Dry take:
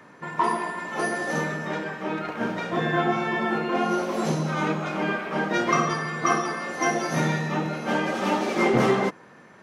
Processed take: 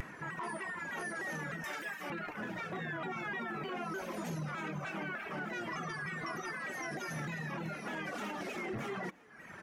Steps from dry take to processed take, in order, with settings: 1.64–2.1 RIAA curve recording; reverb removal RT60 0.7 s; ten-band EQ 125 Hz -4 dB, 250 Hz -7 dB, 500 Hz -9 dB, 1000 Hz -7 dB, 4000 Hz -9 dB, 8000 Hz -5 dB; upward compressor, threshold -40 dBFS; limiter -32.5 dBFS, peak gain reduction 15.5 dB; frequency-shifting echo 0.356 s, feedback 55%, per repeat +46 Hz, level -23.5 dB; shaped vibrato saw down 3.3 Hz, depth 160 cents; gain +1 dB

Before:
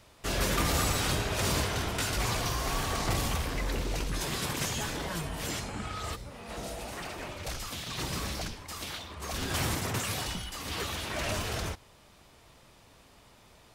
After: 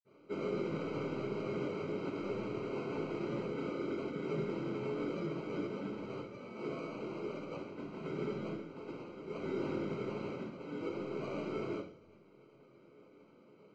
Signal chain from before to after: median filter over 41 samples; HPF 390 Hz 12 dB/oct; band shelf 1100 Hz -8.5 dB; limiter -37.5 dBFS, peak gain reduction 9.5 dB; flange 0.26 Hz, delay 2.8 ms, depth 8.8 ms, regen -64%; sample-and-hold 25×; air absorption 92 m; reverb, pre-delay 47 ms, DRR -60 dB; gain +13 dB

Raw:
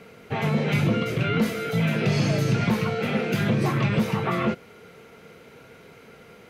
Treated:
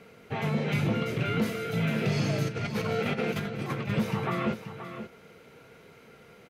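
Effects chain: 2.46–3.9 negative-ratio compressor -26 dBFS, ratio -0.5; echo 0.529 s -10.5 dB; gain -5 dB

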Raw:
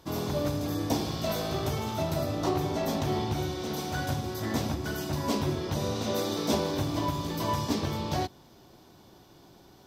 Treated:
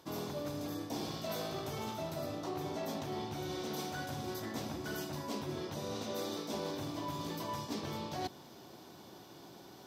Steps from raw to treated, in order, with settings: reverse; compressor 12:1, threshold -37 dBFS, peak gain reduction 16 dB; reverse; Bessel high-pass 160 Hz, order 2; gain +2.5 dB

